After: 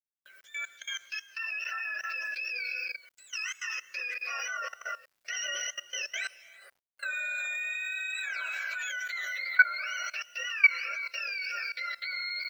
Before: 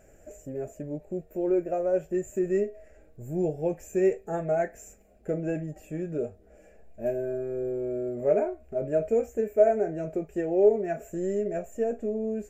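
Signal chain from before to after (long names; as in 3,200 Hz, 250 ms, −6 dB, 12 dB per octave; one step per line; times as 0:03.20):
frequency axis turned over on the octave scale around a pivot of 970 Hz
reverb whose tail is shaped and stops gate 390 ms rising, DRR 7 dB
noise gate with hold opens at −44 dBFS
high-pass filter 550 Hz 24 dB per octave
output level in coarse steps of 20 dB
bit-depth reduction 12 bits, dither none
0:05.35–0:07.73: parametric band 700 Hz +6.5 dB 1.6 octaves
level +5 dB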